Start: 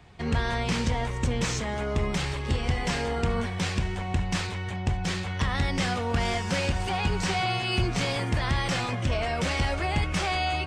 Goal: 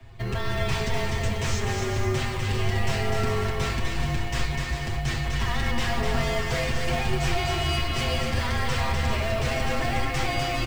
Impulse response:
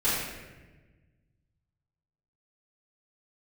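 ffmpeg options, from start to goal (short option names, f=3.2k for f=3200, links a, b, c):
-filter_complex "[0:a]lowshelf=f=270:g=-6.5,aecho=1:1:7.1:0.9,acrossover=split=320[a][b];[a]acompressor=threshold=-38dB:ratio=6[c];[b]acrusher=bits=4:mode=log:mix=0:aa=0.000001[d];[c][d]amix=inputs=2:normalize=0,asoftclip=type=hard:threshold=-23.5dB,bass=f=250:g=15,treble=f=4k:g=-2,afreqshift=-38,aecho=1:1:250|400|490|544|576.4:0.631|0.398|0.251|0.158|0.1,asplit=2[e][f];[1:a]atrim=start_sample=2205,asetrate=48510,aresample=44100[g];[f][g]afir=irnorm=-1:irlink=0,volume=-18.5dB[h];[e][h]amix=inputs=2:normalize=0,volume=-3dB"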